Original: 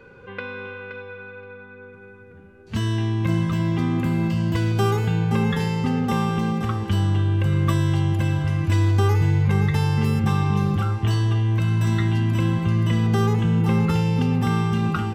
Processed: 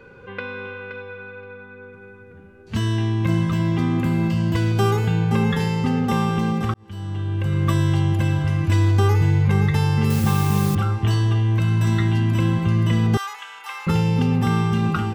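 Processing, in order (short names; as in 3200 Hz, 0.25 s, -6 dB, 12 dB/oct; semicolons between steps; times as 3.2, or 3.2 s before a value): 6.74–7.79 fade in; 10.1–10.75 requantised 6-bit, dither triangular; 13.17–13.87 HPF 1000 Hz 24 dB/oct; gain +1.5 dB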